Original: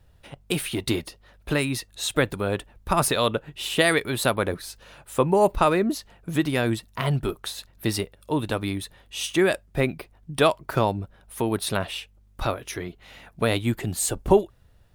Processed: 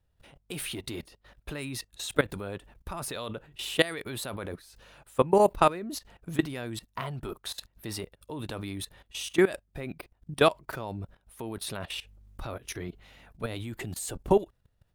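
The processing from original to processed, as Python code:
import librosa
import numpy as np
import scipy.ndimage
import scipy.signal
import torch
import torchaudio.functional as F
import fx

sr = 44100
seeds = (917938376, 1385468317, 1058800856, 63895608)

y = fx.low_shelf(x, sr, hz=250.0, db=5.0, at=(11.98, 13.55))
y = fx.level_steps(y, sr, step_db=18)
y = fx.dynamic_eq(y, sr, hz=970.0, q=1.0, threshold_db=-50.0, ratio=4.0, max_db=5, at=(6.86, 8.03))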